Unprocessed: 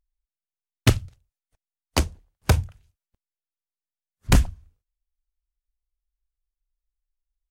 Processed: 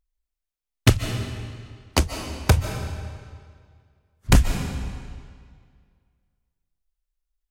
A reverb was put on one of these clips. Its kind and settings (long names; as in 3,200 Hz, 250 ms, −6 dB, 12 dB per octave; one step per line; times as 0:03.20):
comb and all-pass reverb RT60 2 s, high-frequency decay 0.9×, pre-delay 105 ms, DRR 6.5 dB
level +1.5 dB